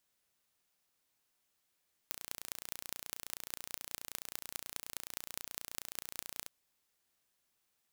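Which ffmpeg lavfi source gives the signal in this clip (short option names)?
-f lavfi -i "aevalsrc='0.316*eq(mod(n,1500),0)*(0.5+0.5*eq(mod(n,9000),0))':d=4.36:s=44100"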